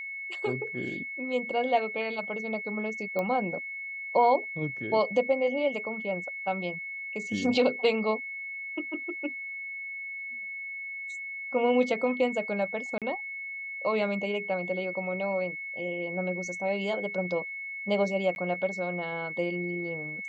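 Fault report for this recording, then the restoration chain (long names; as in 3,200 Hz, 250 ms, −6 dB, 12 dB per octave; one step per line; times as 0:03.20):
whistle 2,200 Hz −35 dBFS
0:03.19: click −19 dBFS
0:12.98–0:13.02: drop-out 37 ms
0:18.35–0:18.36: drop-out 11 ms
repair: click removal
notch filter 2,200 Hz, Q 30
repair the gap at 0:12.98, 37 ms
repair the gap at 0:18.35, 11 ms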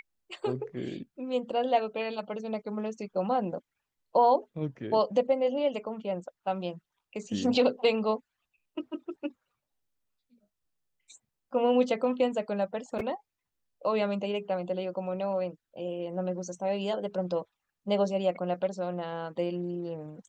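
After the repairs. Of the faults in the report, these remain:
none of them is left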